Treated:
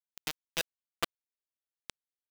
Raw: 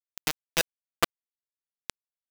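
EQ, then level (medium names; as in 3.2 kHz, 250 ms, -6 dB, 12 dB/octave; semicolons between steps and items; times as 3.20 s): peaking EQ 3.3 kHz +4 dB; -9.0 dB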